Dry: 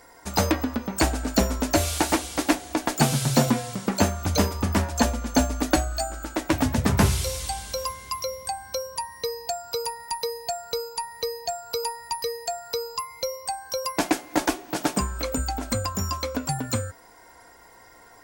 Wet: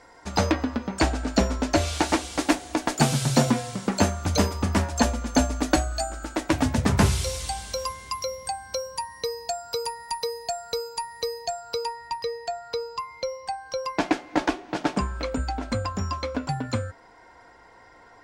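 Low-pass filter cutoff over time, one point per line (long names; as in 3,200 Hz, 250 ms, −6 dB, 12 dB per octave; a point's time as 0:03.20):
0:01.87 5,800 Hz
0:02.51 9,800 Hz
0:11.30 9,800 Hz
0:12.12 4,000 Hz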